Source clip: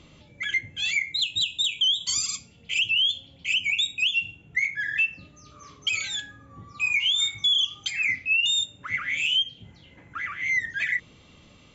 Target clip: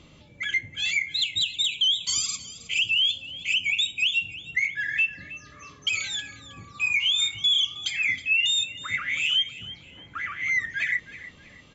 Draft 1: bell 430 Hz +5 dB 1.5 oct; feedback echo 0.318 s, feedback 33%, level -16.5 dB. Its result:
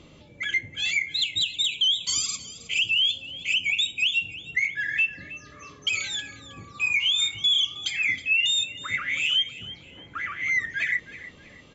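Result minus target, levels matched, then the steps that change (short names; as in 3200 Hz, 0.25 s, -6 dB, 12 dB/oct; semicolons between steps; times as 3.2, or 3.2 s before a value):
500 Hz band +4.0 dB
remove: bell 430 Hz +5 dB 1.5 oct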